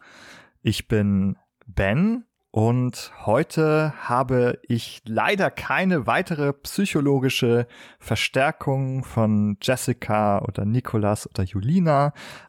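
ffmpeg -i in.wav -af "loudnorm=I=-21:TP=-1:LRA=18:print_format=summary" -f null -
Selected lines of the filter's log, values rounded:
Input Integrated:    -22.8 LUFS
Input True Peak:      -8.1 dBTP
Input LRA:             0.8 LU
Input Threshold:     -33.0 LUFS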